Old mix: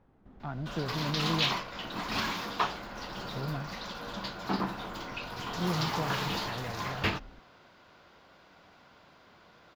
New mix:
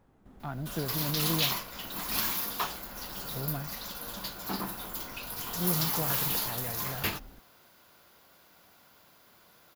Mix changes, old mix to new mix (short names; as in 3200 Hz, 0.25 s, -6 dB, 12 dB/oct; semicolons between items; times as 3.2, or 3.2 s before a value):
background -5.0 dB; master: remove air absorption 170 m